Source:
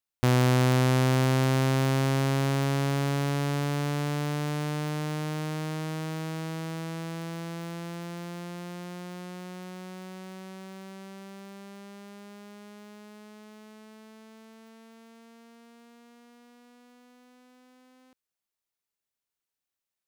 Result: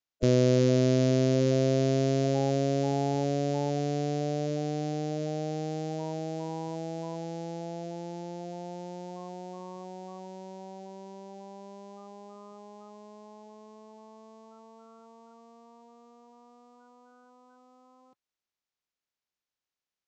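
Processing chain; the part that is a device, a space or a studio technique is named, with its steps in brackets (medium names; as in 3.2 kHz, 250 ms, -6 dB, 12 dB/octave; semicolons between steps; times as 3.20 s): clip after many re-uploads (low-pass 6 kHz 24 dB/octave; coarse spectral quantiser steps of 30 dB)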